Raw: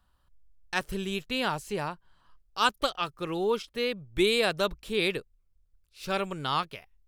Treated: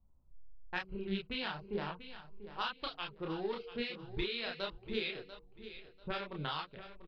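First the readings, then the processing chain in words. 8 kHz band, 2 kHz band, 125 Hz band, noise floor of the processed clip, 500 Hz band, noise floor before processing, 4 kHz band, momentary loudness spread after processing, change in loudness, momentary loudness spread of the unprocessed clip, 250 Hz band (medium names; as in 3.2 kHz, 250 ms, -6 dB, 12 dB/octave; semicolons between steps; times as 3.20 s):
under -30 dB, -9.5 dB, -7.0 dB, -63 dBFS, -11.5 dB, -70 dBFS, -9.0 dB, 13 LU, -10.5 dB, 11 LU, -8.5 dB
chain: local Wiener filter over 25 samples; band-stop 1.2 kHz, Q 17; de-hum 94.01 Hz, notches 5; level-controlled noise filter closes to 470 Hz, open at -24.5 dBFS; FFT filter 650 Hz 0 dB, 1.6 kHz +7 dB, 5.1 kHz +8 dB, 7.5 kHz -29 dB; compression 10:1, threshold -36 dBFS, peak gain reduction 21.5 dB; chorus voices 6, 0.82 Hz, delay 30 ms, depth 4.9 ms; feedback delay 691 ms, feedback 25%, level -13 dB; trim +4 dB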